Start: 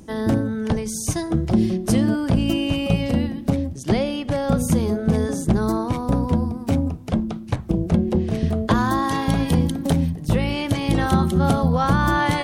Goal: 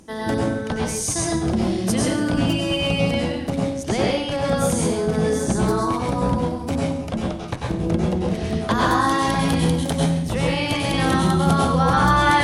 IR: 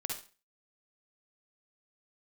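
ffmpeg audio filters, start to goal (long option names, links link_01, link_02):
-filter_complex "[0:a]lowshelf=frequency=350:gain=-8[link_01];[1:a]atrim=start_sample=2205,asetrate=22491,aresample=44100[link_02];[link_01][link_02]afir=irnorm=-1:irlink=0,volume=-1dB"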